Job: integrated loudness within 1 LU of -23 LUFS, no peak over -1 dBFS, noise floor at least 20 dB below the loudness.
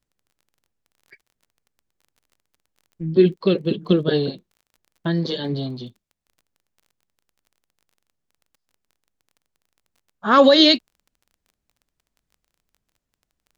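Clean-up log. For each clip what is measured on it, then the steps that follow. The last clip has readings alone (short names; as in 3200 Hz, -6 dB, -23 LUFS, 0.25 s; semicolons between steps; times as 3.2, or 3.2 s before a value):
ticks 24/s; loudness -18.5 LUFS; peak -1.5 dBFS; loudness target -23.0 LUFS
-> de-click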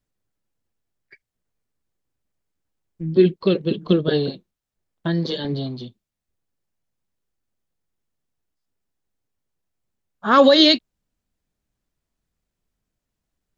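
ticks 0/s; loudness -18.5 LUFS; peak -1.5 dBFS; loudness target -23.0 LUFS
-> gain -4.5 dB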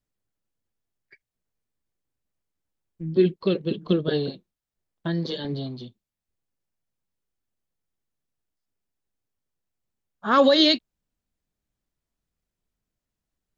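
loudness -23.0 LUFS; peak -6.0 dBFS; noise floor -87 dBFS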